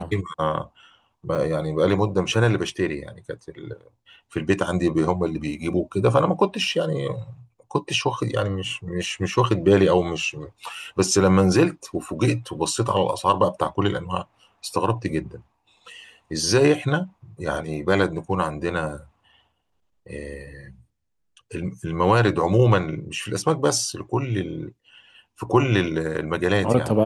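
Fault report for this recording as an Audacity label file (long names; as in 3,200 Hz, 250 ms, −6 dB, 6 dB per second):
1.350000	1.360000	drop-out 6 ms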